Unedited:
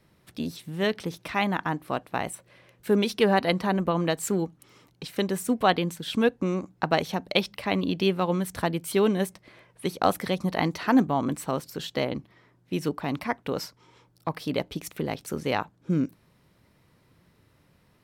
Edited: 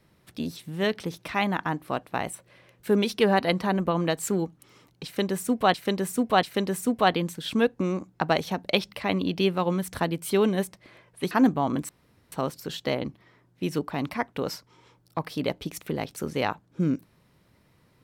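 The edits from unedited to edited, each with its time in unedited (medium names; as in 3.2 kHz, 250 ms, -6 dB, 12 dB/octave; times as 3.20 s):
5.05–5.74 s: loop, 3 plays
9.93–10.84 s: delete
11.42 s: insert room tone 0.43 s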